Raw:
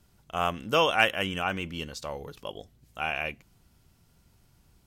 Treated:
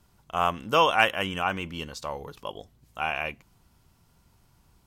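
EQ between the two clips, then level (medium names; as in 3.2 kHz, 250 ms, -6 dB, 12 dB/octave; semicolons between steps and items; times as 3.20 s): peaking EQ 1 kHz +6.5 dB 0.67 oct; 0.0 dB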